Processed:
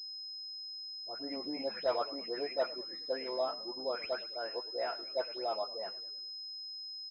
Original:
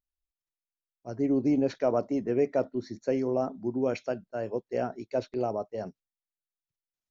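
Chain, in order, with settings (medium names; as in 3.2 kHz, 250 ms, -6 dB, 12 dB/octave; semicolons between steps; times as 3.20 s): delay that grows with frequency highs late, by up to 281 ms; high-pass 810 Hz 12 dB/octave; frequency-shifting echo 105 ms, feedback 50%, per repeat -44 Hz, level -17.5 dB; class-D stage that switches slowly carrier 5.1 kHz; trim +2 dB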